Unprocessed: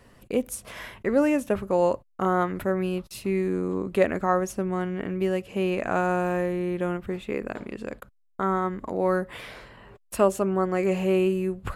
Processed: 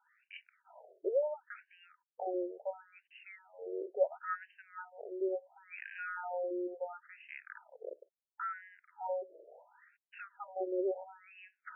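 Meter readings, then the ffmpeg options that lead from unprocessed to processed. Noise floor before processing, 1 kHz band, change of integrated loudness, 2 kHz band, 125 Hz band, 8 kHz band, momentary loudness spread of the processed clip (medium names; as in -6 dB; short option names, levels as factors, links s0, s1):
-63 dBFS, -14.5 dB, -13.0 dB, -12.5 dB, under -40 dB, under -40 dB, 19 LU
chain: -af "asuperstop=centerf=1100:order=12:qfactor=4.9,afftfilt=real='re*between(b*sr/1024,460*pow(2200/460,0.5+0.5*sin(2*PI*0.72*pts/sr))/1.41,460*pow(2200/460,0.5+0.5*sin(2*PI*0.72*pts/sr))*1.41)':imag='im*between(b*sr/1024,460*pow(2200/460,0.5+0.5*sin(2*PI*0.72*pts/sr))/1.41,460*pow(2200/460,0.5+0.5*sin(2*PI*0.72*pts/sr))*1.41)':win_size=1024:overlap=0.75,volume=0.447"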